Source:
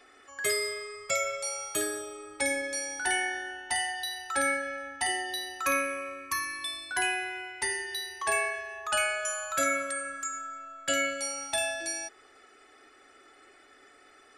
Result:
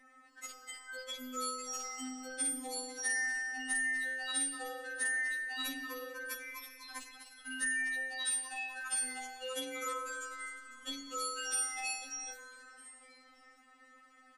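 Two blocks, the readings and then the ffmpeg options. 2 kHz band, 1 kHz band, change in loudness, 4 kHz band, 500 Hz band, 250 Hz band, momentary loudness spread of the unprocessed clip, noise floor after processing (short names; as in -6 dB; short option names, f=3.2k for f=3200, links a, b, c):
-5.0 dB, -10.0 dB, -6.0 dB, -7.0 dB, -13.0 dB, -5.5 dB, 9 LU, -62 dBFS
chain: -filter_complex "[0:a]asplit=9[a][b][c][d][e][f][g][h][i];[b]adelay=250,afreqshift=-54,volume=-8dB[j];[c]adelay=500,afreqshift=-108,volume=-12.4dB[k];[d]adelay=750,afreqshift=-162,volume=-16.9dB[l];[e]adelay=1000,afreqshift=-216,volume=-21.3dB[m];[f]adelay=1250,afreqshift=-270,volume=-25.7dB[n];[g]adelay=1500,afreqshift=-324,volume=-30.2dB[o];[h]adelay=1750,afreqshift=-378,volume=-34.6dB[p];[i]adelay=2000,afreqshift=-432,volume=-39.1dB[q];[a][j][k][l][m][n][o][p][q]amix=inputs=9:normalize=0,afftfilt=real='re*3.46*eq(mod(b,12),0)':imag='im*3.46*eq(mod(b,12),0)':win_size=2048:overlap=0.75,volume=-4dB"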